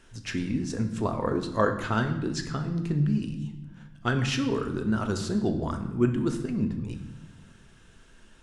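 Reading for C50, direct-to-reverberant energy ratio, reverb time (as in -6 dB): 9.5 dB, 5.0 dB, 1.0 s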